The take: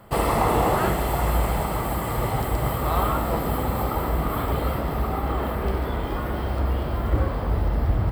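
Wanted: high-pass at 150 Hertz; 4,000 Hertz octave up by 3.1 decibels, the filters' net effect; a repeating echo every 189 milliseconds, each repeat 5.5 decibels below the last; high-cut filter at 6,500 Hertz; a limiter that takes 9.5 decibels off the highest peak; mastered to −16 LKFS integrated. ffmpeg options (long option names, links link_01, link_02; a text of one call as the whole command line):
ffmpeg -i in.wav -af "highpass=150,lowpass=6500,equalizer=frequency=4000:width_type=o:gain=4.5,alimiter=limit=-17.5dB:level=0:latency=1,aecho=1:1:189|378|567|756|945|1134|1323:0.531|0.281|0.149|0.079|0.0419|0.0222|0.0118,volume=11dB" out.wav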